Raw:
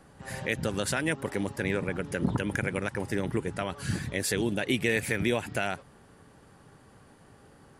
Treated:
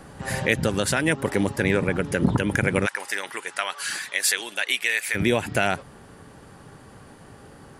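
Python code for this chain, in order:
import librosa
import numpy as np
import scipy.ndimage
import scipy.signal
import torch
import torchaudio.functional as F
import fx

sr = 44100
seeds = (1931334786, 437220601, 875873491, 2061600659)

y = fx.highpass(x, sr, hz=1200.0, slope=12, at=(2.85, 5.14), fade=0.02)
y = fx.rider(y, sr, range_db=3, speed_s=0.5)
y = y * 10.0 ** (8.5 / 20.0)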